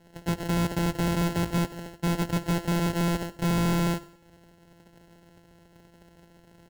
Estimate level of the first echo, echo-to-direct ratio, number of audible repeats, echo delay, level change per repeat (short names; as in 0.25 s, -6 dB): -20.0 dB, -19.0 dB, 3, 96 ms, -7.0 dB